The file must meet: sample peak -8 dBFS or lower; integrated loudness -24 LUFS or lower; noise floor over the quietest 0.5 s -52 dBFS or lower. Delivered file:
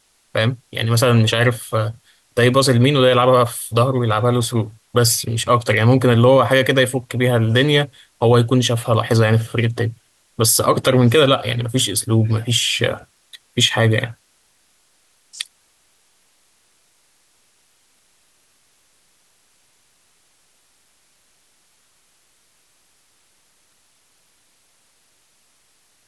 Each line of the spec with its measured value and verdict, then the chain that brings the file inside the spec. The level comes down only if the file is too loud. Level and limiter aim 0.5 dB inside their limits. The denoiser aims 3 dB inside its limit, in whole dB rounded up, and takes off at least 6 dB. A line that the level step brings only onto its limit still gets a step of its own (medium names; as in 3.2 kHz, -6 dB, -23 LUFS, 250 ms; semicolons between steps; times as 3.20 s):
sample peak -3.5 dBFS: fail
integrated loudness -16.5 LUFS: fail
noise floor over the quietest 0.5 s -60 dBFS: pass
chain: trim -8 dB